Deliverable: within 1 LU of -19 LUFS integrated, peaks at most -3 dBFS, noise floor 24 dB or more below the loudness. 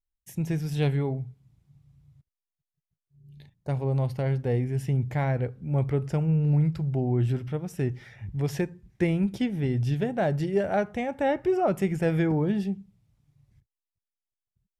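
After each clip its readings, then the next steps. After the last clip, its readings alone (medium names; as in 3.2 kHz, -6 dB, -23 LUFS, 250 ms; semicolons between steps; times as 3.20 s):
loudness -27.5 LUFS; peak level -14.0 dBFS; loudness target -19.0 LUFS
-> trim +8.5 dB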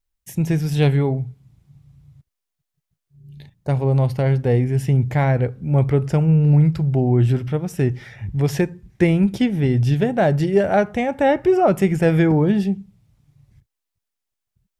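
loudness -19.0 LUFS; peak level -5.5 dBFS; noise floor -82 dBFS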